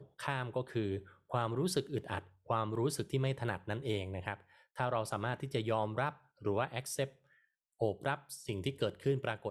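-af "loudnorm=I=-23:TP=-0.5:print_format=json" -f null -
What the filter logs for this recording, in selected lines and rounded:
"input_i" : "-37.2",
"input_tp" : "-18.1",
"input_lra" : "1.4",
"input_thresh" : "-47.4",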